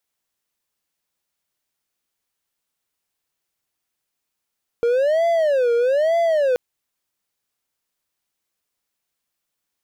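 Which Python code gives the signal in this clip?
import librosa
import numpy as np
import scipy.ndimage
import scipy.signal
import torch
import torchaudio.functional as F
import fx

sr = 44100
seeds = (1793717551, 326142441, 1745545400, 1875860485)

y = fx.siren(sr, length_s=1.73, kind='wail', low_hz=469.0, high_hz=678.0, per_s=1.1, wave='triangle', level_db=-13.0)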